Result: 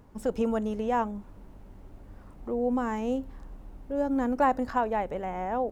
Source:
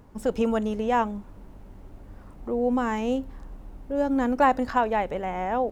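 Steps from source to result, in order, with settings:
dynamic equaliser 3,200 Hz, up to −6 dB, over −41 dBFS, Q 0.71
level −3 dB

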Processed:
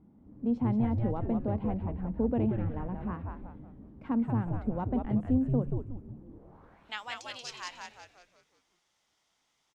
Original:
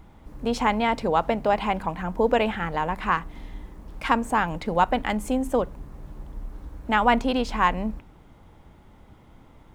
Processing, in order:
band-pass filter sweep 230 Hz → 5,800 Hz, 0:06.25–0:07.01
echo with shifted repeats 182 ms, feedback 44%, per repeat −120 Hz, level −3.5 dB

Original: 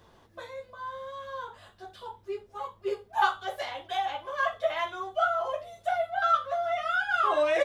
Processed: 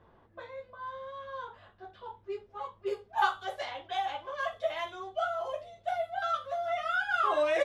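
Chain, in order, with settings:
low-pass that shuts in the quiet parts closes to 1,800 Hz, open at −26.5 dBFS
0:04.34–0:06.68: parametric band 1,300 Hz −5.5 dB 1.1 octaves
level −2.5 dB

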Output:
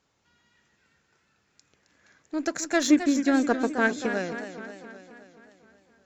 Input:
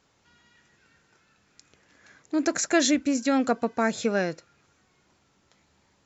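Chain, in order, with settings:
harmonic generator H 3 −16 dB, 8 −44 dB, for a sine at −9.5 dBFS
0:02.90–0:04.06: hollow resonant body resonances 340/1,600 Hz, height 14 dB, ringing for 40 ms
feedback echo with a swinging delay time 263 ms, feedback 59%, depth 103 cents, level −10 dB

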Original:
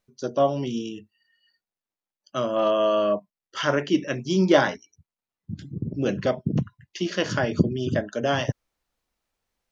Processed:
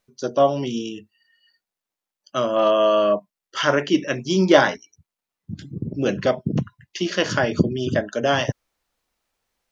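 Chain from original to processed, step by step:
low-shelf EQ 290 Hz −5 dB
level +5 dB

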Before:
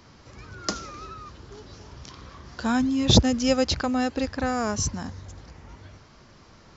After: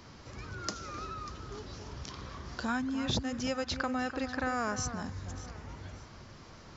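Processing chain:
downward compressor 3 to 1, threshold −36 dBFS, peak gain reduction 18 dB
0:02.68–0:04.94: parametric band 1,500 Hz +8 dB 1.5 octaves
delay that swaps between a low-pass and a high-pass 296 ms, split 2,000 Hz, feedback 53%, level −10.5 dB

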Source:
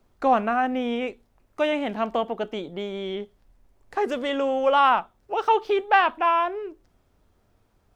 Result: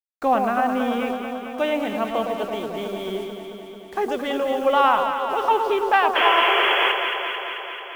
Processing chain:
sound drawn into the spectrogram noise, 0:06.15–0:06.92, 350–3,400 Hz −21 dBFS
bit reduction 8 bits
delay that swaps between a low-pass and a high-pass 110 ms, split 1,100 Hz, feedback 84%, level −5 dB

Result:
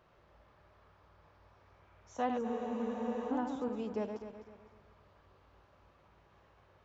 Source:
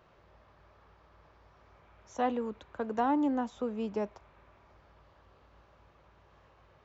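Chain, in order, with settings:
feedback delay that plays each chunk backwards 127 ms, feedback 58%, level −6.5 dB
frozen spectrum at 0:02.45, 0.85 s
level −4 dB

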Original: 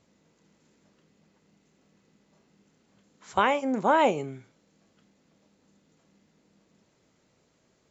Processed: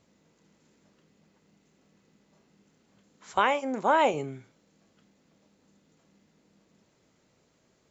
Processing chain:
0:03.31–0:04.14: parametric band 120 Hz −8 dB 2.6 octaves

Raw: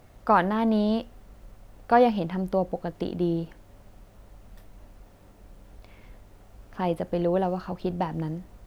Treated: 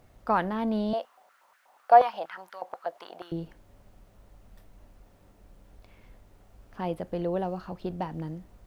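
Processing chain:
0:00.93–0:03.32: high-pass on a step sequencer 8.3 Hz 640–1,600 Hz
level −5 dB

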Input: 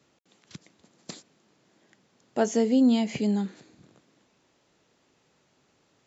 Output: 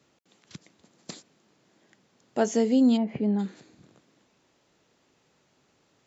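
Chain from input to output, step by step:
0:02.96–0:03.38: low-pass filter 1,000 Hz → 1,900 Hz 12 dB per octave

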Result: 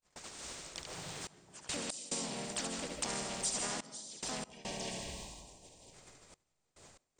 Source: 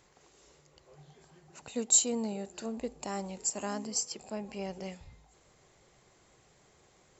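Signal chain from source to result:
noise gate −60 dBFS, range −57 dB
notch filter 420 Hz, Q 13
on a send: single-tap delay 71 ms −6.5 dB
on the sum: gain on a spectral selection 0:04.44–0:05.94, 960–2,300 Hz −25 dB
low-shelf EQ 150 Hz +4 dB
pitch-shifted copies added −7 semitones −10 dB, −4 semitones −6 dB, +3 semitones −2 dB
downward compressor 2.5 to 1, threshold −42 dBFS, peak gain reduction 17 dB
high-shelf EQ 4,300 Hz +7.5 dB
mains-hum notches 50/100/150 Hz
comb and all-pass reverb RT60 0.48 s, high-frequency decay 0.7×, pre-delay 110 ms, DRR 7 dB
gate pattern "xxxxxx..x.xx" 71 BPM −24 dB
every bin compressed towards the loudest bin 2 to 1
level −1 dB

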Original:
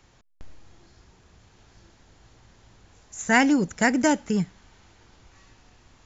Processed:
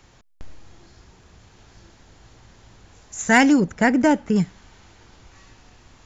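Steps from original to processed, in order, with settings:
0:03.60–0:04.36: low-pass filter 1,900 Hz 6 dB per octave
soft clipping −8.5 dBFS, distortion −23 dB
level +5 dB

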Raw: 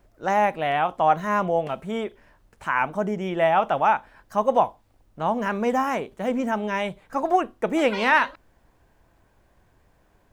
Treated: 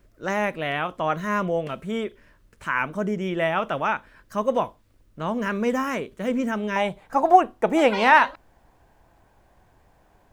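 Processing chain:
parametric band 790 Hz −12 dB 0.55 octaves, from 0:06.76 +6 dB
level +1.5 dB

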